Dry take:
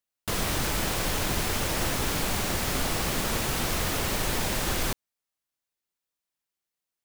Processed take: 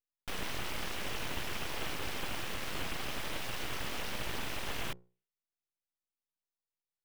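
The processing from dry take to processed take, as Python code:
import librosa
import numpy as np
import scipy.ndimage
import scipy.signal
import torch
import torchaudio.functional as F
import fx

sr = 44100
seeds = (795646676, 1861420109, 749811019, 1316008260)

y = fx.high_shelf_res(x, sr, hz=3700.0, db=-7.0, q=3.0)
y = fx.hum_notches(y, sr, base_hz=60, count=5)
y = np.abs(y)
y = F.gain(torch.from_numpy(y), -7.5).numpy()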